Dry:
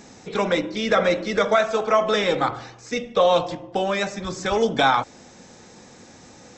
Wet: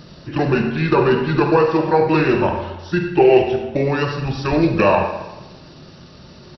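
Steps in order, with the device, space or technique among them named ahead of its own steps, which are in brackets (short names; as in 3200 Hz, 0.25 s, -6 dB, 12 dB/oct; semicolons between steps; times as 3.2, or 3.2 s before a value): 2.63–3.61 ripple EQ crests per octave 0.96, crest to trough 7 dB; monster voice (pitch shift -5.5 st; low shelf 210 Hz +6.5 dB; reverb RT60 1.1 s, pre-delay 33 ms, DRR 4 dB); gain +2 dB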